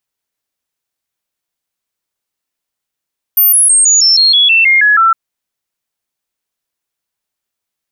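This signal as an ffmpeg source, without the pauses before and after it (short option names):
-f lavfi -i "aevalsrc='0.562*clip(min(mod(t,0.16),0.16-mod(t,0.16))/0.005,0,1)*sin(2*PI*13500*pow(2,-floor(t/0.16)/3)*mod(t,0.16))':d=1.76:s=44100"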